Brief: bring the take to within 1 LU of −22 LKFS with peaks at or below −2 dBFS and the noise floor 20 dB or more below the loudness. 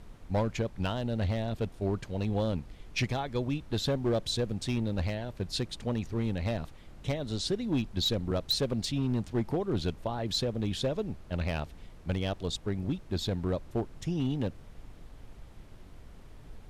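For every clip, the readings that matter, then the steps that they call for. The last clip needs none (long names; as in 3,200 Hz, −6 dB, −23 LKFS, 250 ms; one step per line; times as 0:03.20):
share of clipped samples 1.2%; peaks flattened at −22.5 dBFS; background noise floor −51 dBFS; target noise floor −53 dBFS; integrated loudness −32.5 LKFS; sample peak −22.5 dBFS; target loudness −22.0 LKFS
→ clipped peaks rebuilt −22.5 dBFS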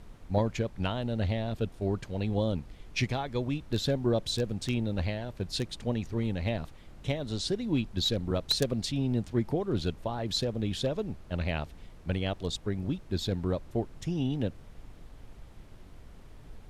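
share of clipped samples 0.0%; background noise floor −51 dBFS; target noise floor −52 dBFS
→ noise reduction from a noise print 6 dB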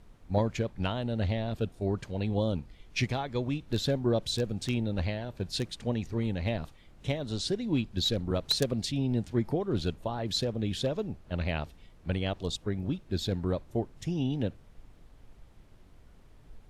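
background noise floor −56 dBFS; integrated loudness −32.0 LKFS; sample peak −13.5 dBFS; target loudness −22.0 LKFS
→ level +10 dB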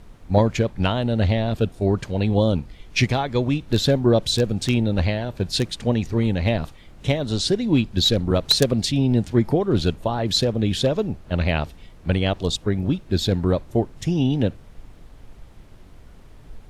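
integrated loudness −22.0 LKFS; sample peak −3.5 dBFS; background noise floor −46 dBFS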